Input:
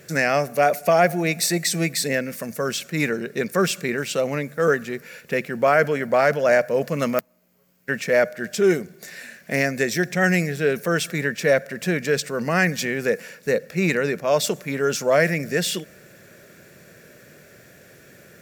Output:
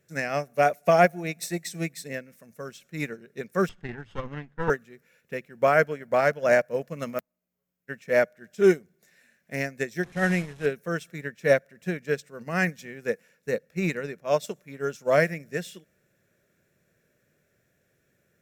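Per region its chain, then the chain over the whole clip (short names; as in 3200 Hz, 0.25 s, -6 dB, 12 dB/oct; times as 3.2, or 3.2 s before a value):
3.69–4.7 minimum comb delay 0.62 ms + LPF 3300 Hz + bell 110 Hz +8.5 dB 0.24 oct
10.04–10.66 delta modulation 64 kbps, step -23 dBFS + high shelf 5300 Hz -9 dB
whole clip: low shelf 94 Hz +9.5 dB; notch 4600 Hz, Q 11; upward expander 2.5:1, over -28 dBFS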